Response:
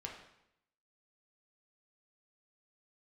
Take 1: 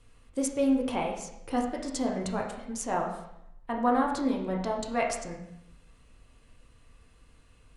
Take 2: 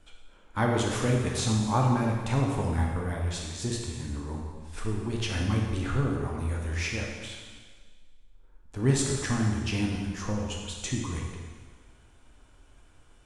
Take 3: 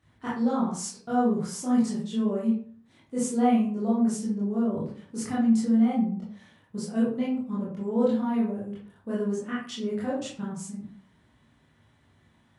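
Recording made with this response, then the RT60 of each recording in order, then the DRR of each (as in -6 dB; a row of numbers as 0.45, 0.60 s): 1; 0.80, 1.6, 0.45 s; -1.0, -1.0, -8.0 dB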